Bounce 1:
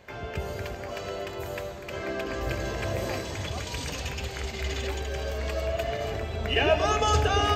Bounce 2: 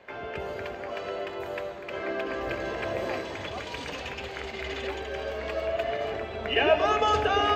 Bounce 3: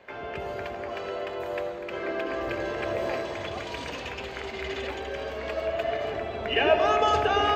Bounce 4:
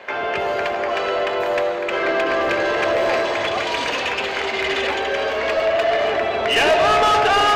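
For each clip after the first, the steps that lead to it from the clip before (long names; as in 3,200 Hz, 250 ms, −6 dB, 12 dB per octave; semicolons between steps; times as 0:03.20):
three-way crossover with the lows and the highs turned down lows −13 dB, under 230 Hz, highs −15 dB, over 3,700 Hz; level +1.5 dB
delay with a low-pass on its return 83 ms, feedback 79%, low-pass 1,200 Hz, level −9.5 dB
mid-hump overdrive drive 23 dB, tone 4,700 Hz, clips at −8.5 dBFS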